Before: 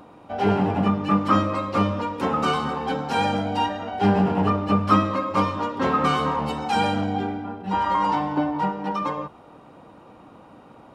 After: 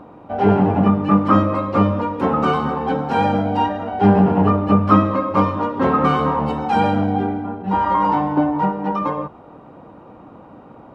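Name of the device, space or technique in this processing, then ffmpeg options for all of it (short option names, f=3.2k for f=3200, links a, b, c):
through cloth: -af "highshelf=f=2.8k:g=-18,volume=6.5dB"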